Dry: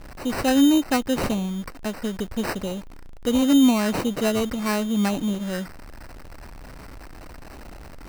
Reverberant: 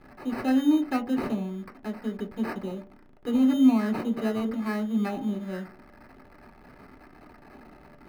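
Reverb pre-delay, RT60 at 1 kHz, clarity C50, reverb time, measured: 3 ms, 0.45 s, 14.5 dB, 0.45 s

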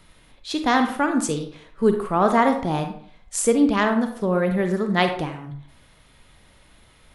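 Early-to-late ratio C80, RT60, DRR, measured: 11.5 dB, 0.55 s, 6.0 dB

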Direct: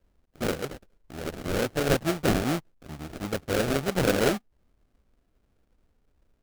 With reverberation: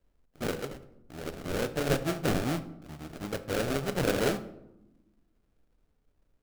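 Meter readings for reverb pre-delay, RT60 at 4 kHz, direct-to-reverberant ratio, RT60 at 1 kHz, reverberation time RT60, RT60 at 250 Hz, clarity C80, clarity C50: 7 ms, 0.50 s, 10.5 dB, 0.85 s, 0.90 s, 1.5 s, 17.0 dB, 14.0 dB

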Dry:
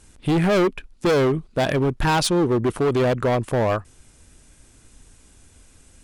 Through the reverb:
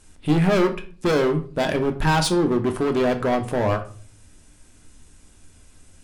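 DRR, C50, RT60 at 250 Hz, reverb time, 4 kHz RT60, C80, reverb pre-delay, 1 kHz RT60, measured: 4.5 dB, 13.0 dB, 0.65 s, 0.40 s, 0.30 s, 18.0 dB, 3 ms, 0.35 s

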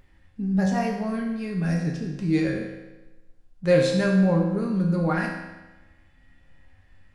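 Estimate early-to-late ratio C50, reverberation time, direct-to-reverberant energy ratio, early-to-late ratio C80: 3.5 dB, 1.1 s, -2.0 dB, 5.5 dB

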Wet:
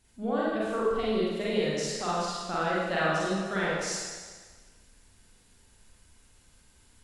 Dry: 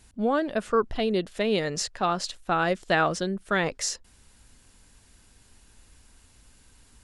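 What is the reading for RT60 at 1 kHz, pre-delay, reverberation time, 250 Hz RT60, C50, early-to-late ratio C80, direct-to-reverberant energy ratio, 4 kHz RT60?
1.5 s, 38 ms, 1.5 s, 1.5 s, -2.0 dB, 0.0 dB, -7.5 dB, 1.5 s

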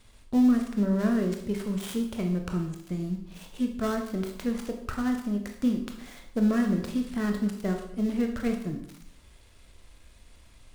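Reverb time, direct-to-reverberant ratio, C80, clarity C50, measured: 0.70 s, 3.5 dB, 9.5 dB, 7.0 dB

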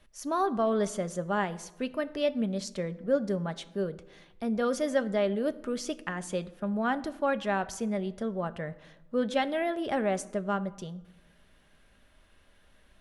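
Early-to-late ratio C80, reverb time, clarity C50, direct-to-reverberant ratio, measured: 20.0 dB, 1.0 s, 18.0 dB, 10.5 dB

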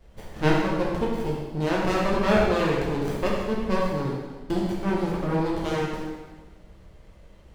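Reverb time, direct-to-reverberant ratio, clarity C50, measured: 1.3 s, -4.5 dB, 0.5 dB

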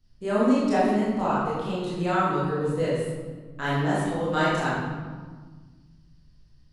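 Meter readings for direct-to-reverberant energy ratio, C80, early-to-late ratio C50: -9.5 dB, 1.5 dB, -2.0 dB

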